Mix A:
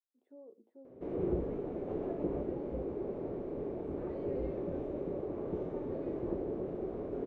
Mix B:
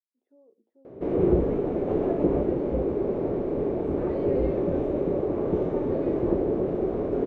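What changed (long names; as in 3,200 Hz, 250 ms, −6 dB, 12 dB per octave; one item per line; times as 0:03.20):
speech −5.0 dB
background +12.0 dB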